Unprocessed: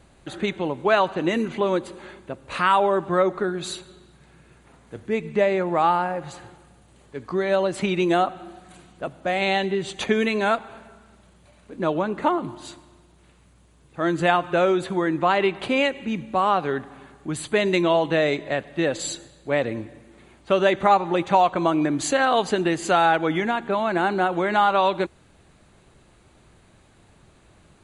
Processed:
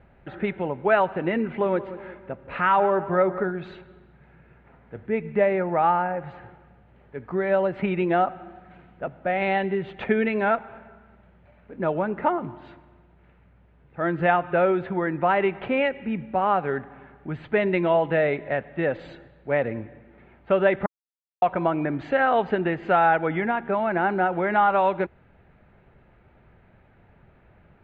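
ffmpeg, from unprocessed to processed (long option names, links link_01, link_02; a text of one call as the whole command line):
ffmpeg -i in.wav -filter_complex "[0:a]asettb=1/sr,asplit=3[link_01][link_02][link_03];[link_01]atrim=end=1.454[link_04];[link_02]atrim=start=1.45:end=3.51,asetpts=PTS-STARTPTS,afade=type=in:duration=0.004:curve=qsin,afade=type=out:start_time=2.056:duration=0.004:curve=qsin,asplit=2[link_05][link_06];[link_06]adelay=179,lowpass=frequency=2300:poles=1,volume=-14dB,asplit=2[link_07][link_08];[link_08]adelay=179,lowpass=frequency=2300:poles=1,volume=0.48,asplit=2[link_09][link_10];[link_10]adelay=179,lowpass=frequency=2300:poles=1,volume=0.48,asplit=2[link_11][link_12];[link_12]adelay=179,lowpass=frequency=2300:poles=1,volume=0.48,asplit=2[link_13][link_14];[link_14]adelay=179,lowpass=frequency=2300:poles=1,volume=0.48[link_15];[link_05][link_07][link_09][link_11][link_13][link_15]amix=inputs=6:normalize=0,atrim=end_sample=90846[link_16];[link_03]atrim=start=3.506[link_17];[link_04][link_16]acrossfade=duration=0.004:curve1=hsin:curve2=qsin[link_18];[link_18][link_17]acrossfade=duration=0.004:curve1=qsin:curve2=hsin,asplit=3[link_19][link_20][link_21];[link_19]atrim=end=20.86,asetpts=PTS-STARTPTS,afade=type=out:start_time=20.856:duration=0.004:curve=hsin[link_22];[link_20]atrim=start=20.86:end=21.42,asetpts=PTS-STARTPTS,volume=0[link_23];[link_21]atrim=start=21.42,asetpts=PTS-STARTPTS,afade=type=in:duration=0.004:curve=hsin[link_24];[link_22][link_23][link_24]concat=n=3:v=0:a=1,lowpass=frequency=2300:width=0.5412,lowpass=frequency=2300:width=1.3066,equalizer=frequency=310:width_type=o:width=0.39:gain=-6,bandreject=frequency=1100:width=7.2" out.wav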